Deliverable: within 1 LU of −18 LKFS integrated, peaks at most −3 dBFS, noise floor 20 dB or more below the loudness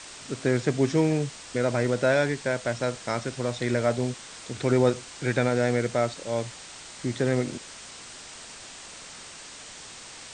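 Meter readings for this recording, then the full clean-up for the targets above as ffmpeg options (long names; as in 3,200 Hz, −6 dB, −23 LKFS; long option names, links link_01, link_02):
background noise floor −44 dBFS; target noise floor −47 dBFS; integrated loudness −26.5 LKFS; sample peak −9.5 dBFS; target loudness −18.0 LKFS
→ -af "afftdn=noise_reduction=6:noise_floor=-44"
-af "volume=8.5dB,alimiter=limit=-3dB:level=0:latency=1"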